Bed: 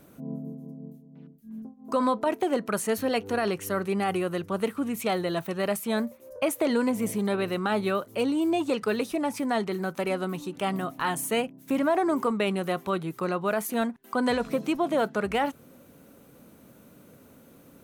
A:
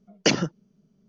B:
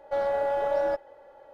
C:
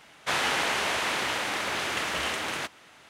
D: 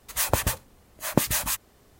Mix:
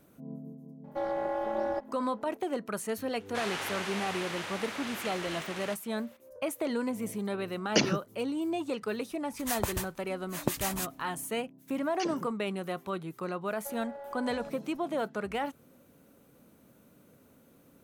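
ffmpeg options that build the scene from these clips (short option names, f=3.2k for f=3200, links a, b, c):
-filter_complex "[2:a]asplit=2[a][b];[1:a]asplit=2[c][d];[0:a]volume=-7dB[e];[a]tremolo=f=230:d=0.824[f];[3:a]highpass=59[g];[d]acrossover=split=1100[h][i];[h]adelay=50[j];[j][i]amix=inputs=2:normalize=0[k];[b]acompressor=threshold=-28dB:ratio=4:attack=6.5:release=390:knee=1:detection=peak[l];[f]atrim=end=1.53,asetpts=PTS-STARTPTS,volume=-2dB,afade=t=in:d=0.004:c=hsin,afade=t=out:st=1.526:d=0.004:c=hsin,adelay=840[m];[g]atrim=end=3.09,asetpts=PTS-STARTPTS,volume=-9.5dB,afade=t=in:d=0.004:c=hsin,afade=t=out:st=3.086:d=0.004:c=hsin,adelay=3080[n];[c]atrim=end=1.08,asetpts=PTS-STARTPTS,volume=-5dB,afade=t=in:d=0.004:c=hsin,afade=t=out:st=1.076:d=0.004:c=hsin,adelay=7500[o];[4:a]atrim=end=1.99,asetpts=PTS-STARTPTS,volume=-8.5dB,afade=t=in:d=0.004:c=hsin,afade=t=out:st=1.986:d=0.004:c=hsin,adelay=410130S[p];[k]atrim=end=1.08,asetpts=PTS-STARTPTS,volume=-17dB,afade=t=in:d=0.004:c=hsin,afade=t=out:st=1.076:d=0.004:c=hsin,adelay=11740[q];[l]atrim=end=1.53,asetpts=PTS-STARTPTS,volume=-12dB,afade=t=in:d=0.004:c=hsin,afade=t=out:st=1.526:d=0.004:c=hsin,adelay=13540[r];[e][m][n][o][p][q][r]amix=inputs=7:normalize=0"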